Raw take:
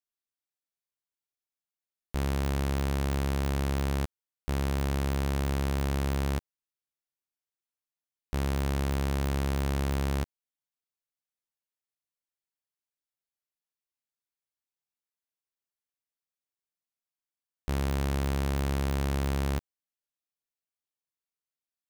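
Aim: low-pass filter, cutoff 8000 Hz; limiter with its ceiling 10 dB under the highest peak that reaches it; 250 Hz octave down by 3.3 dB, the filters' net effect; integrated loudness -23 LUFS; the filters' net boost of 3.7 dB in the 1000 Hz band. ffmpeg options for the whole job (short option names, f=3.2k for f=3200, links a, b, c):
-af "lowpass=8k,equalizer=f=250:t=o:g=-5,equalizer=f=1k:t=o:g=5,volume=17.5dB,alimiter=limit=-13.5dB:level=0:latency=1"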